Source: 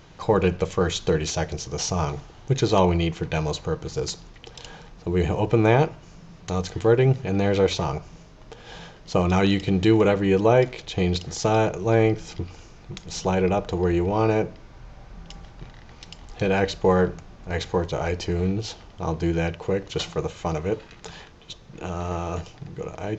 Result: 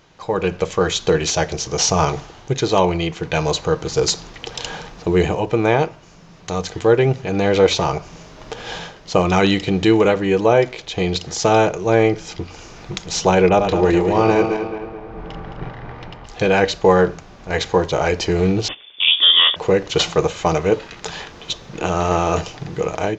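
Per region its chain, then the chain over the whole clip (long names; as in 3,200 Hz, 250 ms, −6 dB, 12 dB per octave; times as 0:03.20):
0:13.49–0:16.26: feedback delay that plays each chunk backwards 108 ms, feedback 67%, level −6.5 dB + low-pass that shuts in the quiet parts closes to 1,300 Hz, open at −16.5 dBFS
0:18.68–0:19.56: noise gate −40 dBFS, range −11 dB + voice inversion scrambler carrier 3,500 Hz
whole clip: low-shelf EQ 190 Hz −9 dB; automatic gain control gain up to 16 dB; level −1 dB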